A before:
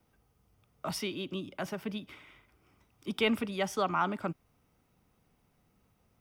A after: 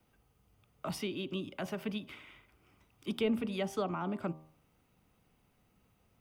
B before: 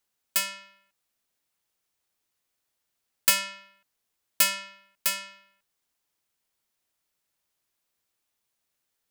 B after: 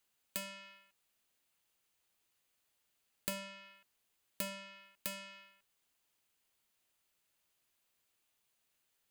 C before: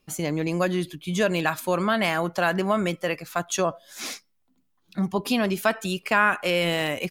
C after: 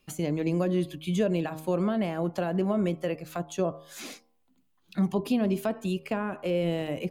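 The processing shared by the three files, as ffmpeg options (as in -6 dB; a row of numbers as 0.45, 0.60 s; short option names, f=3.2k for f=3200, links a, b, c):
-filter_complex "[0:a]equalizer=f=2.8k:w=3:g=3.5,bandreject=f=5.5k:w=14,bandreject=f=78.45:t=h:w=4,bandreject=f=156.9:t=h:w=4,bandreject=f=235.35:t=h:w=4,bandreject=f=313.8:t=h:w=4,bandreject=f=392.25:t=h:w=4,bandreject=f=470.7:t=h:w=4,bandreject=f=549.15:t=h:w=4,bandreject=f=627.6:t=h:w=4,bandreject=f=706.05:t=h:w=4,bandreject=f=784.5:t=h:w=4,bandreject=f=862.95:t=h:w=4,bandreject=f=941.4:t=h:w=4,bandreject=f=1.01985k:t=h:w=4,bandreject=f=1.0983k:t=h:w=4,bandreject=f=1.17675k:t=h:w=4,acrossover=split=620[a][b];[b]acompressor=threshold=-40dB:ratio=8[c];[a][c]amix=inputs=2:normalize=0"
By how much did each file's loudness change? -3.0, -18.0, -4.0 LU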